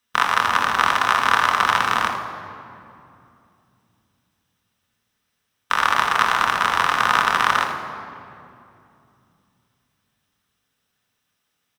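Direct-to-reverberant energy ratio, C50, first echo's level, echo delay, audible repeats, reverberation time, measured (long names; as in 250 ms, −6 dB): 2.0 dB, 5.5 dB, −11.0 dB, 80 ms, 1, 2.6 s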